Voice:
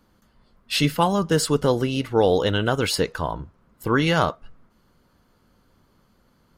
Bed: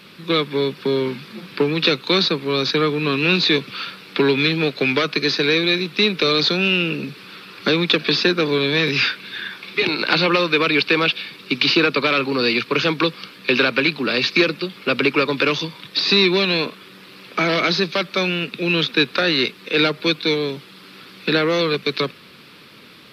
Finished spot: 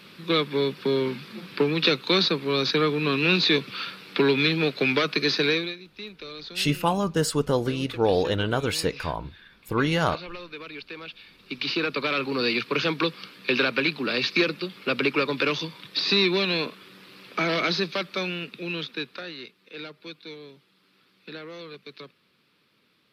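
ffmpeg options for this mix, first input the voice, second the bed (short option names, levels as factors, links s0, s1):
-filter_complex "[0:a]adelay=5850,volume=0.668[s0];[1:a]volume=3.98,afade=t=out:st=5.46:d=0.29:silence=0.125893,afade=t=in:st=11.07:d=1.34:silence=0.158489,afade=t=out:st=17.71:d=1.66:silence=0.16788[s1];[s0][s1]amix=inputs=2:normalize=0"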